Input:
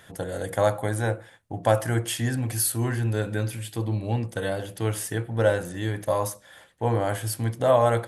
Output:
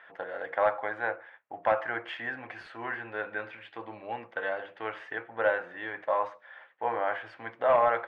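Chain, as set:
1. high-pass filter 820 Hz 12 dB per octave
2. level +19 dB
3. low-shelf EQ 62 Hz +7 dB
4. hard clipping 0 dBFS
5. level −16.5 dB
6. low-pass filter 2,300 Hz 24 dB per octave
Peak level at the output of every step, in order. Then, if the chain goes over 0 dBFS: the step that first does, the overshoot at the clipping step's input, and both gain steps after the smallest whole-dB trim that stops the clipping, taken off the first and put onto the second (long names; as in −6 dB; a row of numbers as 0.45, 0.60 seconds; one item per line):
−12.0, +7.0, +7.0, 0.0, −16.5, −15.0 dBFS
step 2, 7.0 dB
step 2 +12 dB, step 5 −9.5 dB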